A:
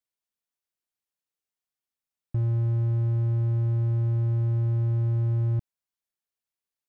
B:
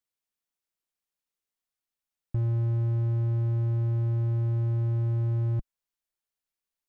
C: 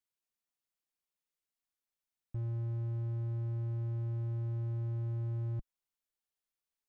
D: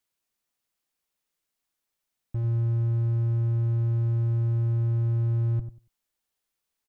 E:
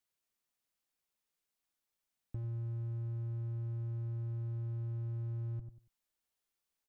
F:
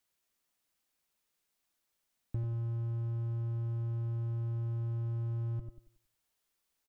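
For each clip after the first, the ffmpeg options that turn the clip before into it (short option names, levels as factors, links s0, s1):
-af "asubboost=boost=3:cutoff=51"
-af "alimiter=level_in=1.33:limit=0.0631:level=0:latency=1,volume=0.75,volume=0.631"
-filter_complex "[0:a]asplit=2[s0][s1];[s1]adelay=94,lowpass=f=810:p=1,volume=0.335,asplit=2[s2][s3];[s3]adelay=94,lowpass=f=810:p=1,volume=0.19,asplit=2[s4][s5];[s5]adelay=94,lowpass=f=810:p=1,volume=0.19[s6];[s0][s2][s4][s6]amix=inputs=4:normalize=0,volume=2.66"
-af "acompressor=threshold=0.0158:ratio=2.5,volume=0.562"
-af "aecho=1:1:91|182|273|364:0.282|0.101|0.0365|0.0131,volume=1.88"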